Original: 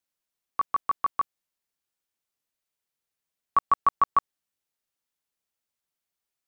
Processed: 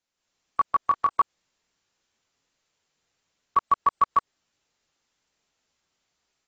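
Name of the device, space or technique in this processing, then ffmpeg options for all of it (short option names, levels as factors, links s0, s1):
low-bitrate web radio: -filter_complex "[0:a]asettb=1/sr,asplit=3[s0][s1][s2];[s0]atrim=end=0.804[s3];[s1]atrim=start=0.8:end=1.2,asetpts=PTS-STARTPTS,afade=t=in:d=0.004:c=qsin,afade=t=out:st=0.396:d=0.004:c=qsin,asplit=2[s4][s5];[s5]adelay=26,volume=0.251[s6];[s4][s6]amix=inputs=2:normalize=0,atrim=end_sample=17640[s7];[s2]atrim=start=1.196[s8];[s3][s7]acrossfade=d=0.004:c1=hsin:c2=qsin[s9];[s9][s8]acrossfade=d=0.004:c1=qsin:c2=hsin,dynaudnorm=f=140:g=3:m=2.82,alimiter=limit=0.15:level=0:latency=1:release=95,volume=1.41" -ar 24000 -c:a aac -b:a 24k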